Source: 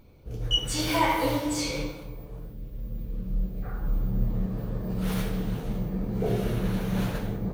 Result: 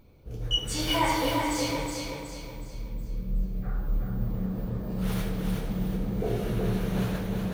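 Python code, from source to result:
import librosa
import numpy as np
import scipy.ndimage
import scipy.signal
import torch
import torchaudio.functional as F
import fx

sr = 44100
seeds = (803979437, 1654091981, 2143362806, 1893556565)

y = fx.echo_feedback(x, sr, ms=369, feedback_pct=41, wet_db=-4.5)
y = F.gain(torch.from_numpy(y), -2.0).numpy()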